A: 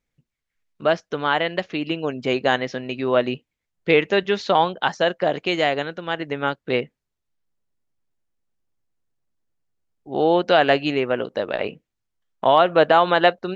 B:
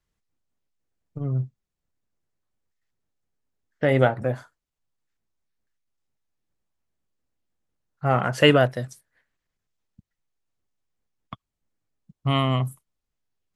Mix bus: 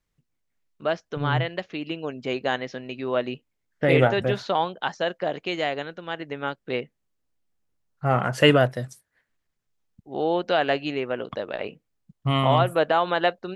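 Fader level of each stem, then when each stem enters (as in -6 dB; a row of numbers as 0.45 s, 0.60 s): -6.0 dB, -0.5 dB; 0.00 s, 0.00 s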